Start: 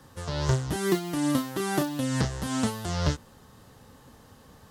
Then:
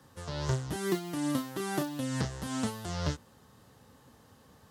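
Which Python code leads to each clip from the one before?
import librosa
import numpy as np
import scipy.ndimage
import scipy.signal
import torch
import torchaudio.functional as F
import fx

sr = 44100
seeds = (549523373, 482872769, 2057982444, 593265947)

y = scipy.signal.sosfilt(scipy.signal.butter(2, 64.0, 'highpass', fs=sr, output='sos'), x)
y = y * librosa.db_to_amplitude(-5.5)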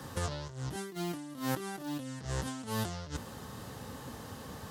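y = fx.over_compress(x, sr, threshold_db=-44.0, ratio=-1.0)
y = y * librosa.db_to_amplitude(5.0)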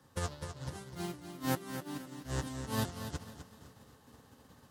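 y = fx.echo_feedback(x, sr, ms=253, feedback_pct=58, wet_db=-4)
y = fx.upward_expand(y, sr, threshold_db=-44.0, expansion=2.5)
y = y * librosa.db_to_amplitude(2.0)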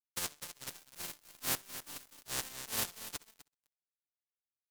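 y = fx.spec_flatten(x, sr, power=0.21)
y = np.sign(y) * np.maximum(np.abs(y) - 10.0 ** (-42.5 / 20.0), 0.0)
y = fx.echo_feedback(y, sr, ms=64, feedback_pct=25, wet_db=-23.0)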